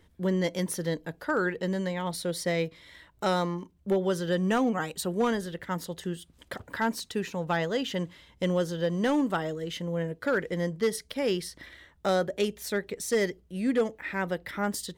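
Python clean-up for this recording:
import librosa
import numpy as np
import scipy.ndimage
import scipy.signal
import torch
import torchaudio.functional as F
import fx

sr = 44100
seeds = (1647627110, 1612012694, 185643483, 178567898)

y = fx.fix_declip(x, sr, threshold_db=-18.5)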